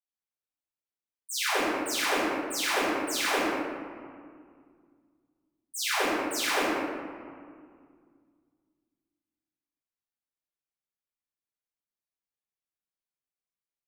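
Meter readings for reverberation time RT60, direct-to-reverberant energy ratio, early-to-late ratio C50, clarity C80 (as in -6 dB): 2.1 s, -17.0 dB, -3.0 dB, -0.5 dB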